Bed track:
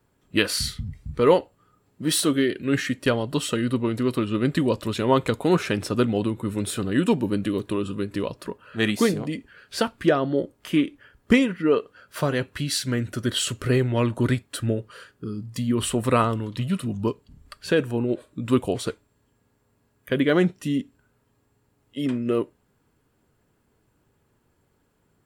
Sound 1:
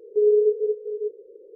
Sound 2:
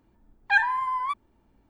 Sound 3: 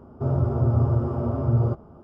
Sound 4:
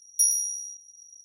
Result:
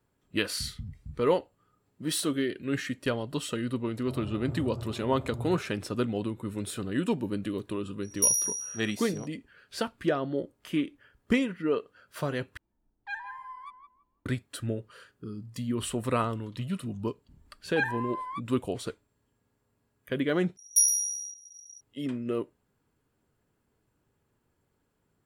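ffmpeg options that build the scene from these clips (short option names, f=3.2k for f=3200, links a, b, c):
-filter_complex "[4:a]asplit=2[a][b];[2:a]asplit=2[c][d];[0:a]volume=-7.5dB[e];[c]asplit=2[f][g];[g]adelay=165,lowpass=f=910:p=1,volume=-4.5dB,asplit=2[h][i];[i]adelay=165,lowpass=f=910:p=1,volume=0.33,asplit=2[j][k];[k]adelay=165,lowpass=f=910:p=1,volume=0.33,asplit=2[l][m];[m]adelay=165,lowpass=f=910:p=1,volume=0.33[n];[f][h][j][l][n]amix=inputs=5:normalize=0[o];[e]asplit=3[p][q][r];[p]atrim=end=12.574[s];[o]atrim=end=1.69,asetpts=PTS-STARTPTS,volume=-16.5dB[t];[q]atrim=start=14.256:end=20.574[u];[b]atrim=end=1.24[v];[r]atrim=start=21.806[w];[3:a]atrim=end=2.03,asetpts=PTS-STARTPTS,volume=-16.5dB,afade=t=in:d=0.004:c=hsin,afade=t=out:st=2.026:d=0.004:c=hsin,adelay=3860[x];[a]atrim=end=1.24,asetpts=PTS-STARTPTS,volume=-1.5dB,afade=t=in:d=0.004:c=hsin,afade=t=out:st=1.236:d=0.004:c=hsin,adelay=8030[y];[d]atrim=end=1.69,asetpts=PTS-STARTPTS,volume=-9dB,afade=t=in:d=0.004:c=hsin,afade=t=out:st=1.686:d=0.004:c=hsin,adelay=17260[z];[s][t]acrossfade=d=0.004:c1=hsin:c2=hsin[aa];[aa][u]acrossfade=d=0.004:c1=hsin:c2=hsin[ab];[ab][v]acrossfade=d=0.004:c1=hsin:c2=hsin[ac];[ac][w]acrossfade=d=0.004:c1=hsin:c2=hsin[ad];[ad][x][y][z]amix=inputs=4:normalize=0"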